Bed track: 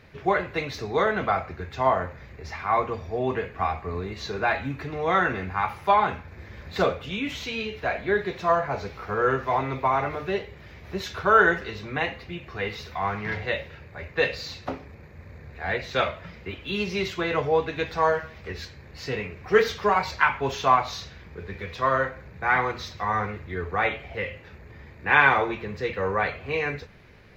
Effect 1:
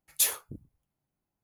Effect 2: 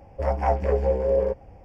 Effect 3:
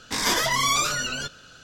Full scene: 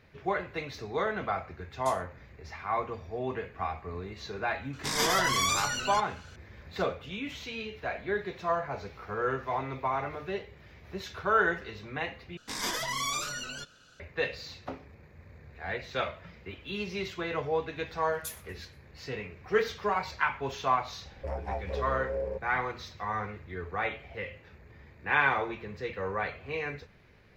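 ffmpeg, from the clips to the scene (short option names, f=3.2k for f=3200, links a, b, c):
-filter_complex "[1:a]asplit=2[a][b];[3:a]asplit=2[c][d];[0:a]volume=-7.5dB[e];[a]lowpass=f=9k:w=0.5412,lowpass=f=9k:w=1.3066[f];[b]aecho=1:1:119|238|357|476:0.0668|0.0374|0.021|0.0117[g];[2:a]acompressor=threshold=-24dB:ratio=3:attack=0.28:release=838:knee=1:detection=peak[h];[e]asplit=2[i][j];[i]atrim=end=12.374[k];[d]atrim=end=1.63,asetpts=PTS-STARTPTS,volume=-10dB[l];[j]atrim=start=13.996[m];[f]atrim=end=1.43,asetpts=PTS-STARTPTS,volume=-17dB,afade=t=in:d=0.004:c=hsin,afade=t=out:st=1.426:d=0.004:c=hsin,adelay=1660[n];[c]atrim=end=1.63,asetpts=PTS-STARTPTS,volume=-5.5dB,afade=t=in:d=0.004:c=hsin,afade=t=out:st=1.626:d=0.004:c=hsin,adelay=208593S[o];[g]atrim=end=1.43,asetpts=PTS-STARTPTS,volume=-15.5dB,afade=t=in:d=0.004:c=hsin,afade=t=out:st=1.426:d=0.004:c=hsin,adelay=18050[p];[h]atrim=end=1.64,asetpts=PTS-STARTPTS,volume=-5dB,afade=t=in:d=0.004:c=hsin,afade=t=out:st=1.636:d=0.004:c=hsin,adelay=21050[q];[k][l]acrossfade=d=0.004:c1=hsin:c2=hsin[r];[r][m]acrossfade=d=0.004:c1=hsin:c2=hsin[s];[s][n][o][p][q]amix=inputs=5:normalize=0"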